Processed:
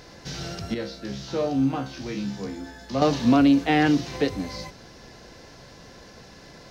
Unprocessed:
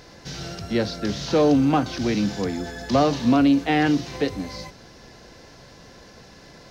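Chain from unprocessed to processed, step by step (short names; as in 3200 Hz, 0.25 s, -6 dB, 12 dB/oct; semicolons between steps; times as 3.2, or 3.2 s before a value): 0.74–3.02 resonator 67 Hz, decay 0.36 s, harmonics all, mix 90%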